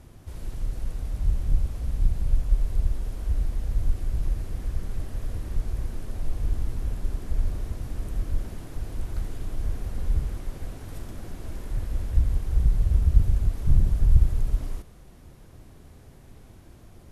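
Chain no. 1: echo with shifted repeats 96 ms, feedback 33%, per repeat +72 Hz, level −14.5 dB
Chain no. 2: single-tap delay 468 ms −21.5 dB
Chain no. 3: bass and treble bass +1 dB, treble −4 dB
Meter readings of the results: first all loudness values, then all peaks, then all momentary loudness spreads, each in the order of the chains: −29.0, −29.5, −28.5 LKFS; −5.0, −4.5, −3.5 dBFS; 15, 15, 16 LU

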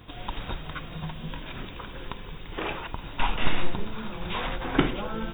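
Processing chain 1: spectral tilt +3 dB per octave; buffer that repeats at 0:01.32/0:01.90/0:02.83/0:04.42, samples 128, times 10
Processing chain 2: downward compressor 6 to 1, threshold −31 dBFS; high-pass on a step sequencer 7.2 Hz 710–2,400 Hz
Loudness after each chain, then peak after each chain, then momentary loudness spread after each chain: −32.5, −36.0 LKFS; −6.0, −14.0 dBFS; 11, 8 LU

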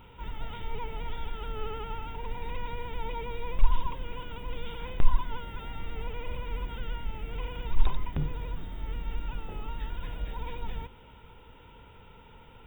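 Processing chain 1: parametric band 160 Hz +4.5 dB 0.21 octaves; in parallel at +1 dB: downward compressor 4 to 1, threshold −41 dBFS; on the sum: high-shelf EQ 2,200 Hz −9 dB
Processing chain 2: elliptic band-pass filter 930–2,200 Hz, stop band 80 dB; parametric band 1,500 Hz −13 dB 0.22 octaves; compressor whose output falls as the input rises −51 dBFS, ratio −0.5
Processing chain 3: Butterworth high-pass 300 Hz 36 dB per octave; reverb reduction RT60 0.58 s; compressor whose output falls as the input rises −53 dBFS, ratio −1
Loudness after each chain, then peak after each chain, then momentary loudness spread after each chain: −36.0, −51.0, −51.0 LKFS; −6.0, −31.5, −35.0 dBFS; 16, 8, 7 LU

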